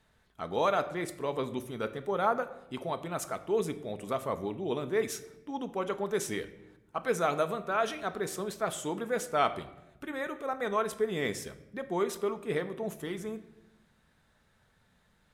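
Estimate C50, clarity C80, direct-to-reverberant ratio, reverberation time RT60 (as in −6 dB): 14.0 dB, 16.0 dB, 8.5 dB, 0.95 s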